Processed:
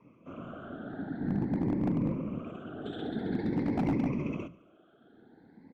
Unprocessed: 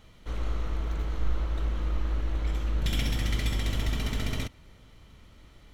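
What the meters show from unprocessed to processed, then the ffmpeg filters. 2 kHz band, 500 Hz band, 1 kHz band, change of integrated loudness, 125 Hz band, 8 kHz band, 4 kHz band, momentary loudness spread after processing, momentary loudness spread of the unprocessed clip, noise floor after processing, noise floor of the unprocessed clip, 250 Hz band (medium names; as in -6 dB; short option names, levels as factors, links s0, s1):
-8.0 dB, +4.0 dB, 0.0 dB, -1.5 dB, -5.0 dB, under -25 dB, -17.0 dB, 14 LU, 5 LU, -61 dBFS, -54 dBFS, +9.0 dB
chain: -filter_complex "[0:a]afftfilt=real='re*pow(10,23/40*sin(2*PI*(0.73*log(max(b,1)*sr/1024/100)/log(2)-(0.48)*(pts-256)/sr)))':imag='im*pow(10,23/40*sin(2*PI*(0.73*log(max(b,1)*sr/1024/100)/log(2)-(0.48)*(pts-256)/sr)))':win_size=1024:overlap=0.75,lowpass=1500,afreqshift=190,afftfilt=real='hypot(re,im)*cos(2*PI*random(0))':imag='hypot(re,im)*sin(2*PI*random(1))':win_size=512:overlap=0.75,aeval=exprs='0.119*(abs(mod(val(0)/0.119+3,4)-2)-1)':c=same,asplit=2[s0][s1];[s1]aecho=0:1:71|142|213|284|355:0.0891|0.0517|0.03|0.0174|0.0101[s2];[s0][s2]amix=inputs=2:normalize=0,volume=0.668"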